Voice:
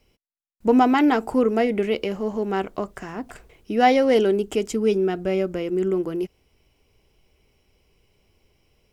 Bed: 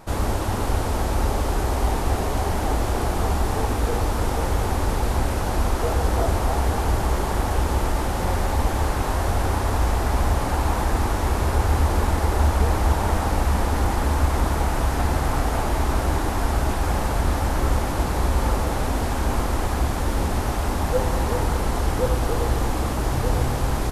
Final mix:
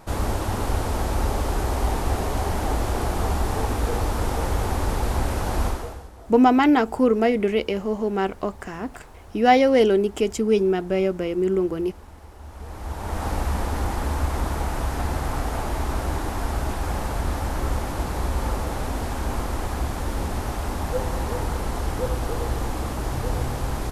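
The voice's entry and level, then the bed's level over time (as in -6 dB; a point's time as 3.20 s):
5.65 s, +1.0 dB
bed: 5.67 s -1.5 dB
6.12 s -23.5 dB
12.39 s -23.5 dB
13.26 s -4 dB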